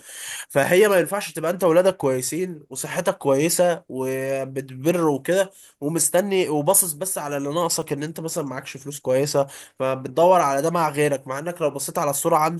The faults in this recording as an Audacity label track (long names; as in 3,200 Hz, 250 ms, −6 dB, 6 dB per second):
7.820000	7.820000	drop-out 3 ms